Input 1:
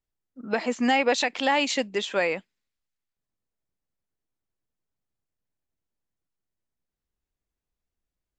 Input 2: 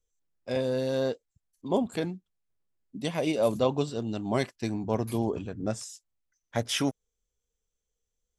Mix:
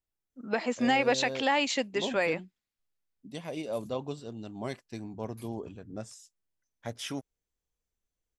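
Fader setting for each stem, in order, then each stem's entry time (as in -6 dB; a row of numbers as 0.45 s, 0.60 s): -3.5 dB, -9.0 dB; 0.00 s, 0.30 s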